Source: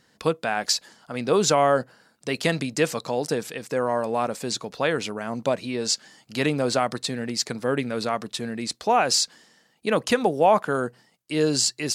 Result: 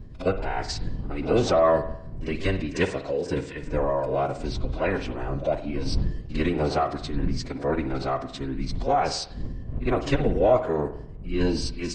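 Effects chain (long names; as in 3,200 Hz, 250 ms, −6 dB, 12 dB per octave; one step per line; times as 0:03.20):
wind on the microphone 96 Hz −30 dBFS
low-pass filter 2,200 Hz 6 dB per octave
parametric band 150 Hz −6 dB 0.34 octaves
notch filter 1,500 Hz, Q 7.6
echo ahead of the sound 55 ms −14 dB
phase-vocoder pitch shift with formants kept −9.5 semitones
on a send at −10 dB: convolution reverb, pre-delay 52 ms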